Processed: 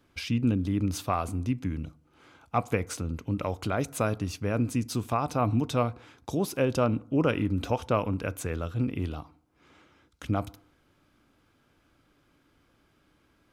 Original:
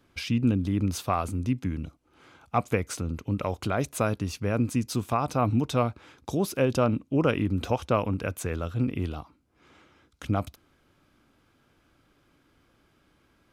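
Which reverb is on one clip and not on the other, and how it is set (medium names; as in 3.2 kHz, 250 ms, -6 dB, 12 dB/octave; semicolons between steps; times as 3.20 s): FDN reverb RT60 0.61 s, low-frequency decay 1×, high-frequency decay 0.4×, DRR 18 dB; trim -1.5 dB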